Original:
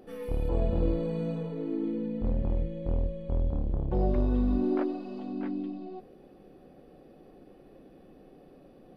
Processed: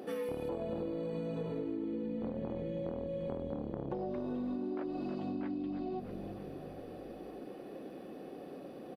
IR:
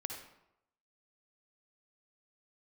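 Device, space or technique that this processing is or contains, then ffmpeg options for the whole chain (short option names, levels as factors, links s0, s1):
serial compression, leveller first: -filter_complex "[0:a]highpass=210,asplit=6[s0][s1][s2][s3][s4][s5];[s1]adelay=318,afreqshift=-48,volume=0.158[s6];[s2]adelay=636,afreqshift=-96,volume=0.0871[s7];[s3]adelay=954,afreqshift=-144,volume=0.0479[s8];[s4]adelay=1272,afreqshift=-192,volume=0.0263[s9];[s5]adelay=1590,afreqshift=-240,volume=0.0145[s10];[s0][s6][s7][s8][s9][s10]amix=inputs=6:normalize=0,acompressor=threshold=0.02:ratio=6,acompressor=threshold=0.00708:ratio=5,volume=2.51"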